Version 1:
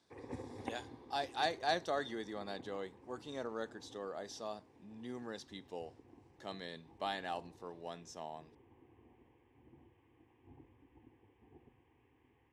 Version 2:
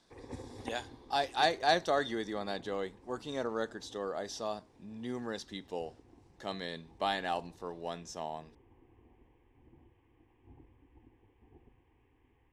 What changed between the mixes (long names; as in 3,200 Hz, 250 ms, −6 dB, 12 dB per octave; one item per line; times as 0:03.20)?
speech +6.5 dB
master: remove high-pass filter 93 Hz